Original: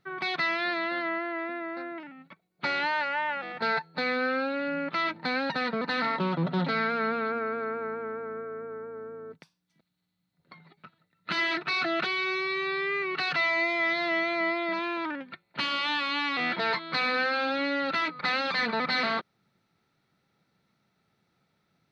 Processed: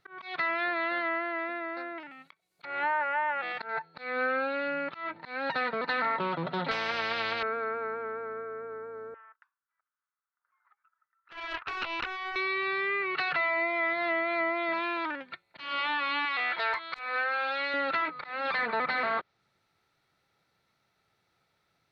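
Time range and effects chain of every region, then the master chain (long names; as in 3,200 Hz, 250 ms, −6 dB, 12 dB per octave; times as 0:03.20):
0:02.11–0:03.69: high-pass filter 43 Hz + high-shelf EQ 2,400 Hz +10.5 dB + treble cut that deepens with the level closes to 1,400 Hz, closed at −24.5 dBFS
0:06.71–0:07.43: double-tracking delay 22 ms −6.5 dB + every bin compressed towards the loudest bin 4 to 1
0:09.14–0:12.36: flat-topped band-pass 1,300 Hz, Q 2.3 + highs frequency-modulated by the lows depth 0.49 ms
0:16.25–0:17.74: parametric band 200 Hz −14.5 dB 2.1 octaves + wrap-around overflow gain 19 dB
whole clip: parametric band 200 Hz −12 dB 1.4 octaves; treble cut that deepens with the level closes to 1,800 Hz, closed at −25 dBFS; volume swells 216 ms; level +1.5 dB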